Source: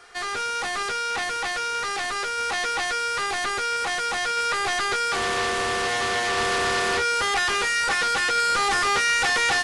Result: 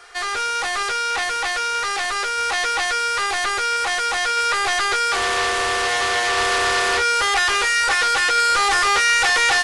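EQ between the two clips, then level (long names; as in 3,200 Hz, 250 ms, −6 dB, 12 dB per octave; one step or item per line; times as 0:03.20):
parametric band 180 Hz −13.5 dB 1.4 octaves
+5.0 dB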